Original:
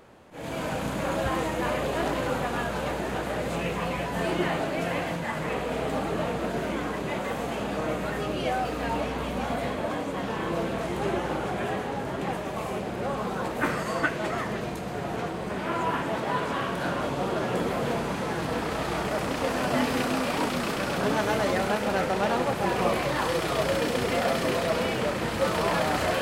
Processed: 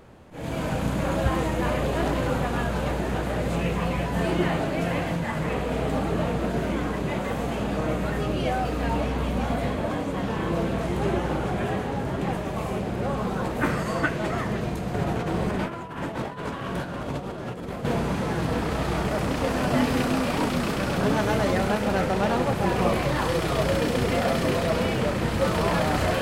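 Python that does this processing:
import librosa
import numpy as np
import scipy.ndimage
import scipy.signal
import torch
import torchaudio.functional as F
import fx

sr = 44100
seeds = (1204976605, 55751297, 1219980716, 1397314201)

y = fx.over_compress(x, sr, threshold_db=-32.0, ratio=-0.5, at=(14.94, 17.85))
y = fx.low_shelf(y, sr, hz=190.0, db=11.0)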